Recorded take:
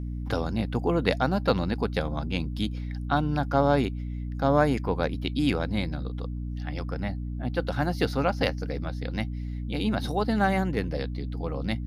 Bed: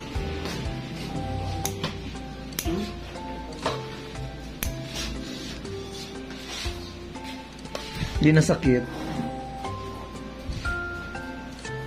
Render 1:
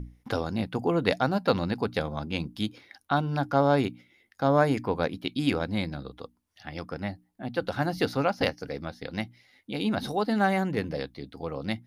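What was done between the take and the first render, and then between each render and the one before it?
notches 60/120/180/240/300 Hz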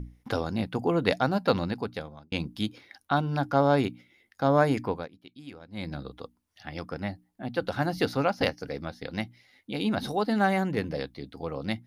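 1.56–2.32 fade out; 4.86–5.93 dip -18.5 dB, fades 0.22 s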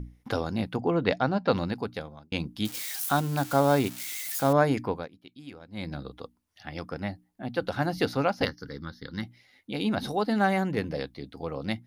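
0.76–1.52 air absorption 110 m; 2.65–4.53 switching spikes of -25.5 dBFS; 8.45–9.23 fixed phaser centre 2500 Hz, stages 6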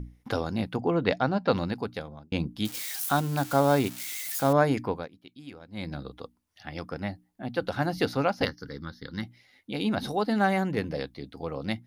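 2.08–2.59 tilt shelf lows +3.5 dB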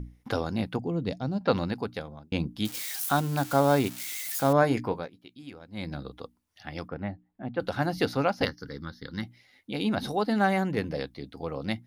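0.79–1.41 EQ curve 170 Hz 0 dB, 1600 Hz -17 dB, 8500 Hz +2 dB; 4.61–5.43 doubler 17 ms -10 dB; 6.88–7.6 air absorption 450 m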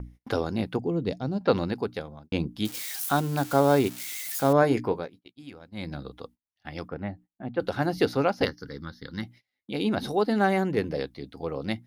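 gate -49 dBFS, range -24 dB; dynamic EQ 390 Hz, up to +6 dB, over -41 dBFS, Q 2.3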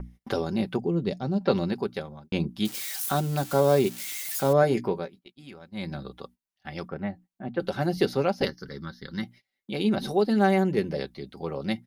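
comb 5.2 ms, depth 51%; dynamic EQ 1300 Hz, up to -5 dB, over -34 dBFS, Q 0.81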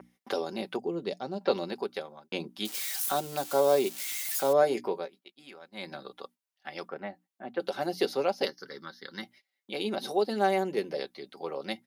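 dynamic EQ 1600 Hz, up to -5 dB, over -41 dBFS, Q 1.2; HPF 420 Hz 12 dB/oct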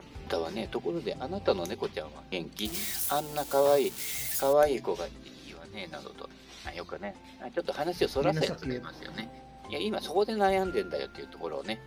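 add bed -14.5 dB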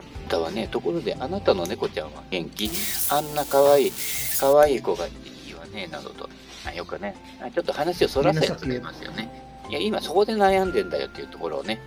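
gain +7 dB

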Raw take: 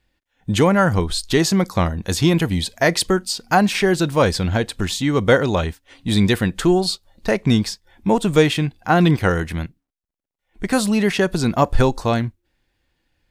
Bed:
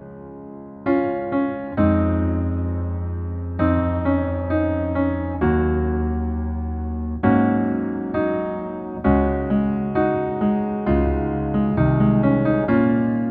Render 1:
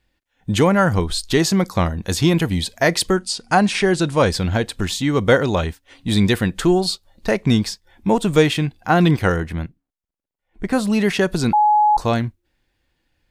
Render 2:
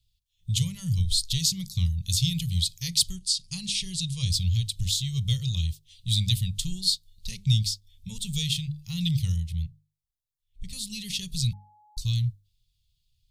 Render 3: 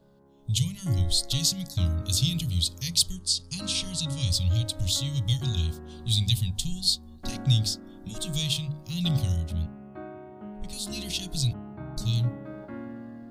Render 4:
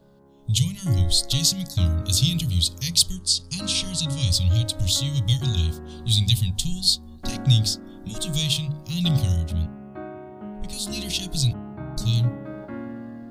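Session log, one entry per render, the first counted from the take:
3.15–4.32 careless resampling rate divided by 2×, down none, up filtered; 9.36–10.9 high shelf 2300 Hz -8.5 dB; 11.53–11.97 bleep 843 Hz -11 dBFS
elliptic band-stop 130–3500 Hz, stop band 40 dB; notches 50/100/150/200/250/300/350/400 Hz
add bed -21.5 dB
gain +4.5 dB

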